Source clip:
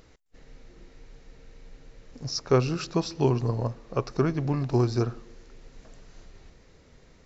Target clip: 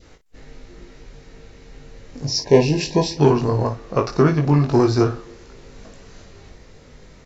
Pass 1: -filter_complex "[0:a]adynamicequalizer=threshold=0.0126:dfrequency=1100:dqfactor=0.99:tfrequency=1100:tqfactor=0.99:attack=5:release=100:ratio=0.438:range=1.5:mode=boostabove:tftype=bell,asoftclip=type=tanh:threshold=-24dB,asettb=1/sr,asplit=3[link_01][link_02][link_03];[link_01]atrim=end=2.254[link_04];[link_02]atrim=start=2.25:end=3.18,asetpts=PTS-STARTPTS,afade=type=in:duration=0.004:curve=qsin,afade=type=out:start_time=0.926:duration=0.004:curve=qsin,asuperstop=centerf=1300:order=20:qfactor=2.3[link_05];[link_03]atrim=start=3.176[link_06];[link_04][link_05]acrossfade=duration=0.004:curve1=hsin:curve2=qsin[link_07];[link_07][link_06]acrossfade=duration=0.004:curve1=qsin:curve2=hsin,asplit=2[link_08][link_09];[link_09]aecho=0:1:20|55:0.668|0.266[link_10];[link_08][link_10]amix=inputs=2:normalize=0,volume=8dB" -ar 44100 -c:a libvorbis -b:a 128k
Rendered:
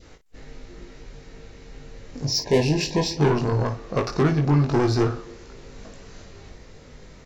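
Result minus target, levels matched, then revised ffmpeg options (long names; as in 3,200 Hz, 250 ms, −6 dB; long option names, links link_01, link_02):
soft clipping: distortion +13 dB
-filter_complex "[0:a]adynamicequalizer=threshold=0.0126:dfrequency=1100:dqfactor=0.99:tfrequency=1100:tqfactor=0.99:attack=5:release=100:ratio=0.438:range=1.5:mode=boostabove:tftype=bell,asoftclip=type=tanh:threshold=-12.5dB,asettb=1/sr,asplit=3[link_01][link_02][link_03];[link_01]atrim=end=2.254[link_04];[link_02]atrim=start=2.25:end=3.18,asetpts=PTS-STARTPTS,afade=type=in:duration=0.004:curve=qsin,afade=type=out:start_time=0.926:duration=0.004:curve=qsin,asuperstop=centerf=1300:order=20:qfactor=2.3[link_05];[link_03]atrim=start=3.176[link_06];[link_04][link_05]acrossfade=duration=0.004:curve1=hsin:curve2=qsin[link_07];[link_07][link_06]acrossfade=duration=0.004:curve1=qsin:curve2=hsin,asplit=2[link_08][link_09];[link_09]aecho=0:1:20|55:0.668|0.266[link_10];[link_08][link_10]amix=inputs=2:normalize=0,volume=8dB" -ar 44100 -c:a libvorbis -b:a 128k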